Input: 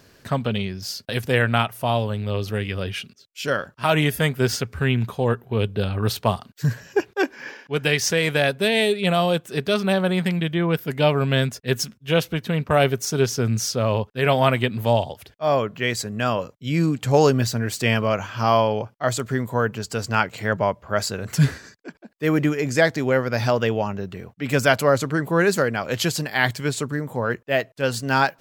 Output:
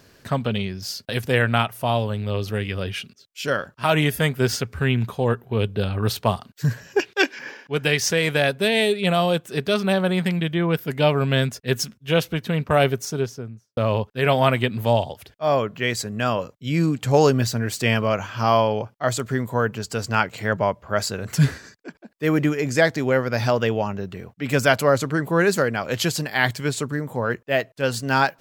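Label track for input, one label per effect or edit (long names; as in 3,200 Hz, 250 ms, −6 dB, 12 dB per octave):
6.990000	7.390000	meter weighting curve D
12.800000	13.770000	fade out and dull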